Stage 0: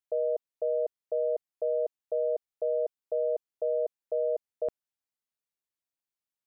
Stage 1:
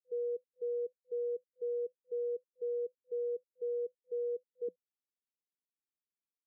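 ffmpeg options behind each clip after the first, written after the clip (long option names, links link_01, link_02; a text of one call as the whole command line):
ffmpeg -i in.wav -af "afftfilt=real='re*between(b*sr/4096,180,500)':imag='im*between(b*sr/4096,180,500)':win_size=4096:overlap=0.75,volume=-4dB" out.wav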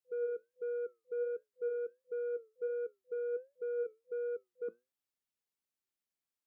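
ffmpeg -i in.wav -af "asoftclip=type=tanh:threshold=-33dB,flanger=delay=6.7:depth=2.6:regen=80:speed=1.4:shape=triangular,volume=6dB" out.wav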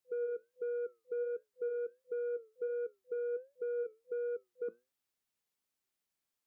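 ffmpeg -i in.wav -af "acompressor=threshold=-42dB:ratio=2,volume=4dB" out.wav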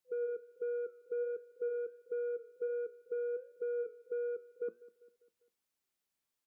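ffmpeg -i in.wav -af "aecho=1:1:199|398|597|796:0.0944|0.05|0.0265|0.0141" out.wav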